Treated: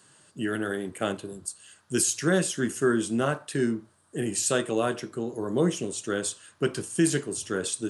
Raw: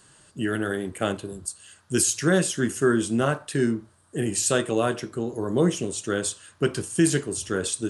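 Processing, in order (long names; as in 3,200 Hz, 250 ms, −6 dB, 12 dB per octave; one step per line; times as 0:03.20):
high-pass filter 120 Hz
level −2.5 dB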